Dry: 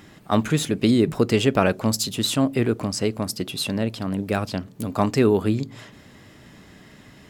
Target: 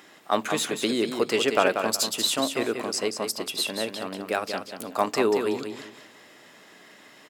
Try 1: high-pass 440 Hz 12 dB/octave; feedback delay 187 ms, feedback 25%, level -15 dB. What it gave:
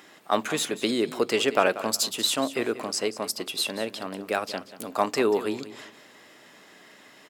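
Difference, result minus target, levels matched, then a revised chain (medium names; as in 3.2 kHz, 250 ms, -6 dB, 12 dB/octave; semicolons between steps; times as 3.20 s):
echo-to-direct -8 dB
high-pass 440 Hz 12 dB/octave; feedback delay 187 ms, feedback 25%, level -7 dB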